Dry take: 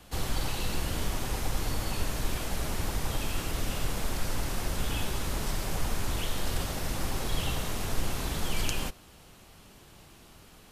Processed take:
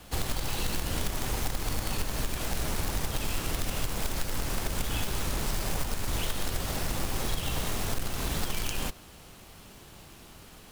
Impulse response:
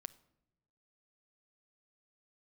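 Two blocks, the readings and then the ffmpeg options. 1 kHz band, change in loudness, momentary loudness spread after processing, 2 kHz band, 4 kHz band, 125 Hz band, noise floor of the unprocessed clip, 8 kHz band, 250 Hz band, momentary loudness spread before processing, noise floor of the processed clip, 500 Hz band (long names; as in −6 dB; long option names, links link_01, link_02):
+0.5 dB, +1.0 dB, 18 LU, +0.5 dB, +1.0 dB, 0.0 dB, −54 dBFS, +2.0 dB, 0.0 dB, 2 LU, −51 dBFS, 0.0 dB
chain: -af "acrusher=bits=2:mode=log:mix=0:aa=0.000001,acompressor=threshold=-28dB:ratio=6,volume=3dB"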